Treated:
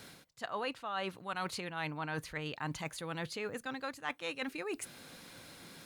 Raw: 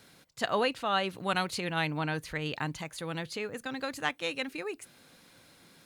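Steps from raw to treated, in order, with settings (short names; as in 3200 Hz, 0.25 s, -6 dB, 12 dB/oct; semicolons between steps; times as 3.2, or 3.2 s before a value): dynamic EQ 1100 Hz, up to +7 dB, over -43 dBFS, Q 1; reverse; compressor 6:1, threshold -42 dBFS, peak gain reduction 21.5 dB; reverse; gain +5.5 dB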